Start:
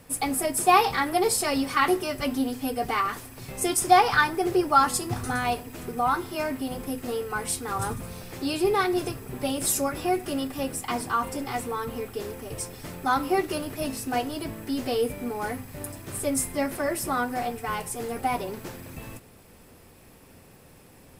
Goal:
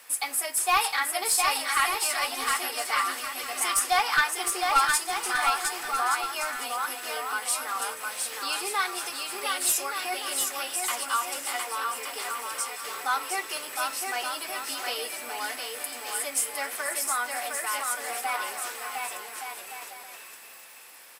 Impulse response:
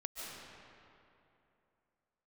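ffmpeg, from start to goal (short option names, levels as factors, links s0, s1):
-filter_complex "[0:a]highpass=1200,asplit=2[s0][s1];[s1]acompressor=threshold=0.00794:ratio=6,volume=1.12[s2];[s0][s2]amix=inputs=2:normalize=0,aeval=exprs='clip(val(0),-1,0.126)':c=same,aecho=1:1:710|1172|1471|1666|1793:0.631|0.398|0.251|0.158|0.1"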